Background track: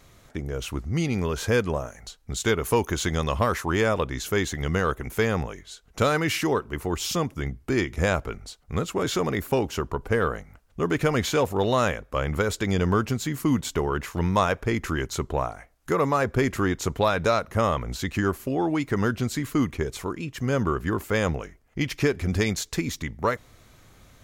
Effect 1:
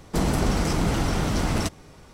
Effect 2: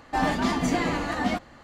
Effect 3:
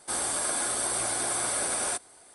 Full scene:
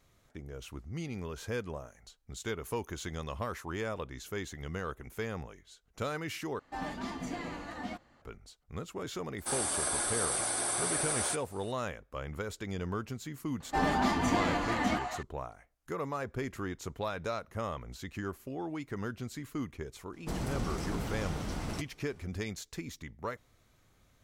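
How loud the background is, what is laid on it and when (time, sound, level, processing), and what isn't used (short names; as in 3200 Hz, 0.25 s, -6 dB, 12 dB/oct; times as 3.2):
background track -13.5 dB
6.59 replace with 2 -14 dB
9.38 add 3 -3.5 dB
13.6 add 2 -5 dB + delay with a stepping band-pass 0.199 s, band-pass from 1000 Hz, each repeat 1.4 oct, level -1 dB
20.13 add 1 -13 dB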